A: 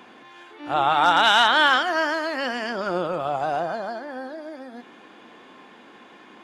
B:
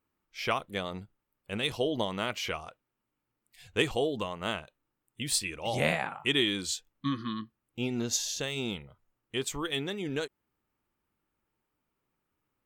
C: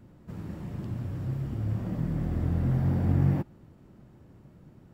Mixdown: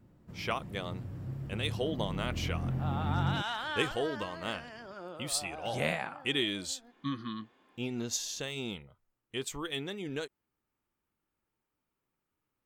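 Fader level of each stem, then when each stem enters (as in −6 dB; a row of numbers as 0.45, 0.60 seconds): −19.0, −4.0, −7.5 decibels; 2.10, 0.00, 0.00 seconds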